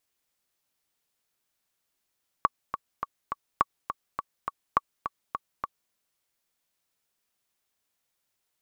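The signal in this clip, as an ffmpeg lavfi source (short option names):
-f lavfi -i "aevalsrc='pow(10,(-7-9.5*gte(mod(t,4*60/207),60/207))/20)*sin(2*PI*1130*mod(t,60/207))*exp(-6.91*mod(t,60/207)/0.03)':d=3.47:s=44100"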